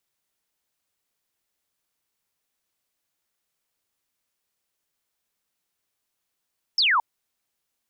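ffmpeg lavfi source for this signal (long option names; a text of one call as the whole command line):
ffmpeg -f lavfi -i "aevalsrc='0.141*clip(t/0.002,0,1)*clip((0.22-t)/0.002,0,1)*sin(2*PI*5500*0.22/log(870/5500)*(exp(log(870/5500)*t/0.22)-1))':duration=0.22:sample_rate=44100" out.wav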